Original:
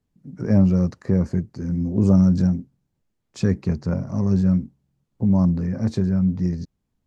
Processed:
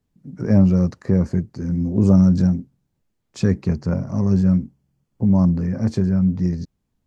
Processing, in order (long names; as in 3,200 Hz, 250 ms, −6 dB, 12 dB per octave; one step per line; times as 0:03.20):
0:03.69–0:06.35: notch filter 3,800 Hz, Q 8.6
level +2 dB